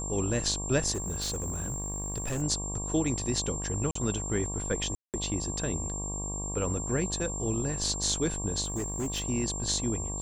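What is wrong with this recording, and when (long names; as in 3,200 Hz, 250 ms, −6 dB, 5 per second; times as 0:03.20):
mains buzz 50 Hz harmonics 23 −37 dBFS
whistle 7,400 Hz −35 dBFS
0:00.94–0:02.43: clipping −28.5 dBFS
0:03.91–0:03.95: drop-out 44 ms
0:04.95–0:05.14: drop-out 188 ms
0:08.64–0:09.24: clipping −28 dBFS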